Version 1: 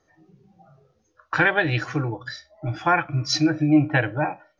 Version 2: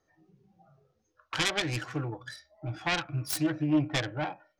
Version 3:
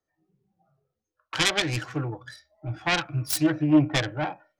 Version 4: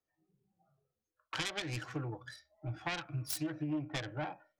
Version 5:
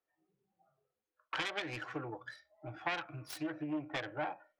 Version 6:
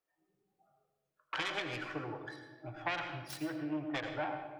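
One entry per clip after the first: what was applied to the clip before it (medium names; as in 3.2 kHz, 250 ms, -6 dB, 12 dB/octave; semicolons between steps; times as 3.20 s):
self-modulated delay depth 0.32 ms; trim -8 dB
three bands expanded up and down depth 40%; trim +4.5 dB
compression 6:1, threshold -28 dBFS, peak gain reduction 14 dB; trim -6 dB
tone controls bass -13 dB, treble -14 dB; trim +3 dB
reverberation RT60 1.1 s, pre-delay 79 ms, DRR 5.5 dB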